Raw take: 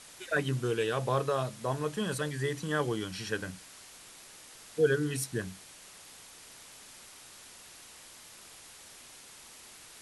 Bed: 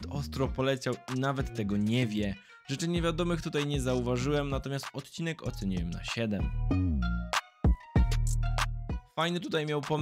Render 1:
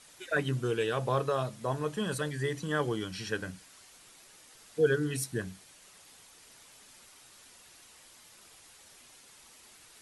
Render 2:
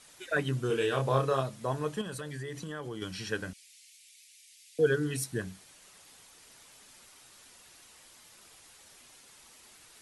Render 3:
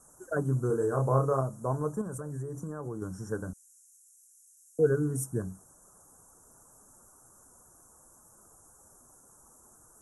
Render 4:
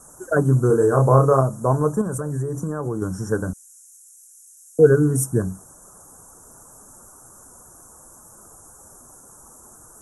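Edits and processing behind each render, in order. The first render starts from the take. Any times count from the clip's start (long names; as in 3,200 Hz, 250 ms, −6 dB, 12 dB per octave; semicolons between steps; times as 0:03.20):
broadband denoise 6 dB, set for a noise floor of −52 dBFS
0:00.67–0:01.41: double-tracking delay 30 ms −4 dB; 0:02.01–0:03.02: downward compressor, threshold −35 dBFS; 0:03.53–0:04.79: elliptic high-pass filter 2,200 Hz, stop band 60 dB
inverse Chebyshev band-stop filter 2,000–4,600 Hz, stop band 40 dB; low-shelf EQ 210 Hz +5.5 dB
level +11.5 dB; brickwall limiter −1 dBFS, peak gain reduction 1.5 dB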